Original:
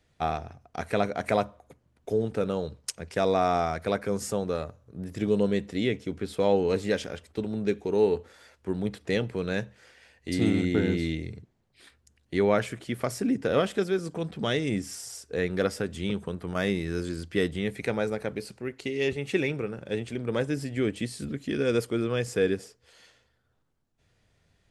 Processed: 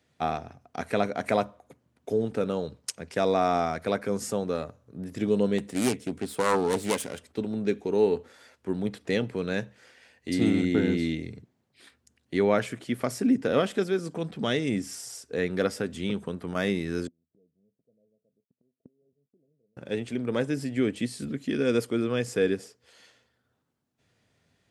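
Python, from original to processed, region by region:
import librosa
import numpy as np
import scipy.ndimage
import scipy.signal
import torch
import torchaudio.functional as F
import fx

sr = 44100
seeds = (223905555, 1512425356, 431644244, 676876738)

y = fx.chain(x, sr, fx.self_delay(depth_ms=0.6),
    fx.highpass(hz=44.0, slope=12),
    fx.peak_eq(hz=9200.0, db=11.5, octaves=0.6), at=(5.58, 7.24))
y = fx.chain(y, sr, fx.dead_time(dead_ms=0.24),
    fx.cheby_ripple(hz=680.0, ripple_db=6),
    fx.gate_flip(shuts_db=-37.0, range_db=-37), at=(17.07, 19.77))
y = scipy.signal.sosfilt(scipy.signal.butter(2, 110.0, 'highpass', fs=sr, output='sos'), y)
y = fx.peak_eq(y, sr, hz=250.0, db=6.0, octaves=0.21)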